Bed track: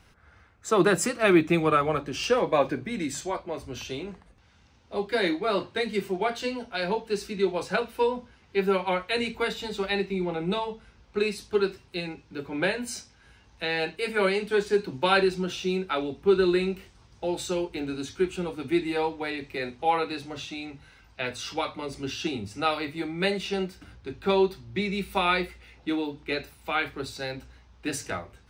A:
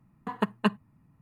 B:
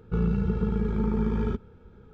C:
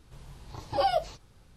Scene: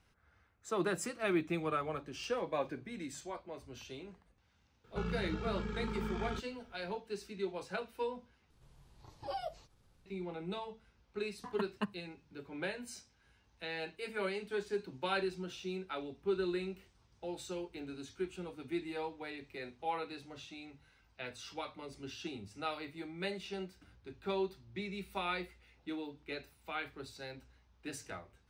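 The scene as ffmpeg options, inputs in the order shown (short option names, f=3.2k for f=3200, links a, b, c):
-filter_complex "[0:a]volume=-13dB[a];[2:a]tiltshelf=f=1.1k:g=-10[b];[3:a]acompressor=mode=upward:threshold=-45dB:ratio=2.5:attack=3.2:release=140:knee=2.83:detection=peak[c];[a]asplit=2[d][e];[d]atrim=end=8.504[f];[c]atrim=end=1.56,asetpts=PTS-STARTPTS,volume=-14.5dB[g];[e]atrim=start=10.056[h];[b]atrim=end=2.13,asetpts=PTS-STARTPTS,volume=-4.5dB,afade=t=in:d=0.004:c=hsin,afade=t=out:st=2.126:d=0.004:c=hsin,adelay=4840[i];[1:a]atrim=end=1.21,asetpts=PTS-STARTPTS,volume=-12dB,afade=t=in:d=0.004:c=hsin,afade=t=out:st=1.206:d=0.004:c=hsin,adelay=11170[j];[f][g]acrossfade=d=0.004:c1=hsin:c2=hsin[k];[k][h]acrossfade=d=0.004:c1=hsin:c2=hsin[l];[l][i][j]amix=inputs=3:normalize=0"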